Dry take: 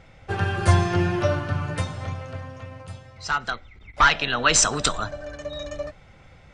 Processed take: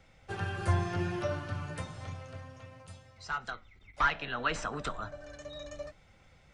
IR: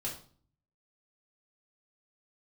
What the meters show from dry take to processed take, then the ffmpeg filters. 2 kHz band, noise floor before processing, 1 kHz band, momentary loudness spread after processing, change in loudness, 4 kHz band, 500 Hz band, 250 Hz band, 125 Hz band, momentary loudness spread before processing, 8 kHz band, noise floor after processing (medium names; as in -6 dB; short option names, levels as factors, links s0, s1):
-11.0 dB, -50 dBFS, -10.5 dB, 18 LU, -12.5 dB, -16.5 dB, -11.0 dB, -11.0 dB, -11.0 dB, 19 LU, -25.5 dB, -61 dBFS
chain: -filter_complex "[0:a]highshelf=f=4400:g=8.5,acrossover=split=230|1300|2400[s0][s1][s2][s3];[s3]acompressor=threshold=0.0112:ratio=6[s4];[s0][s1][s2][s4]amix=inputs=4:normalize=0,flanger=delay=3.4:depth=4.9:regen=-79:speed=0.65:shape=triangular,volume=0.473"